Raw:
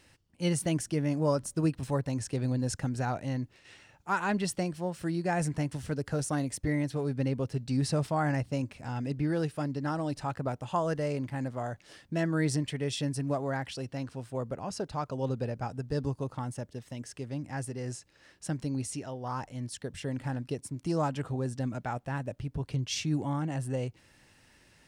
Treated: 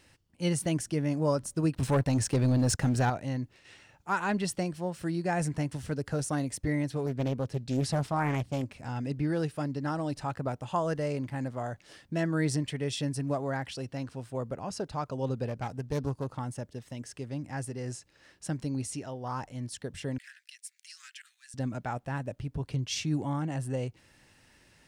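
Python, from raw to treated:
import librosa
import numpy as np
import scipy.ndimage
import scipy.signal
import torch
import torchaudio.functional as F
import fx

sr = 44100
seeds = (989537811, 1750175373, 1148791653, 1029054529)

y = fx.leveller(x, sr, passes=2, at=(1.74, 3.1))
y = fx.doppler_dist(y, sr, depth_ms=0.57, at=(7.06, 8.72))
y = fx.self_delay(y, sr, depth_ms=0.2, at=(15.47, 16.31))
y = fx.steep_highpass(y, sr, hz=1700.0, slope=48, at=(20.18, 21.54))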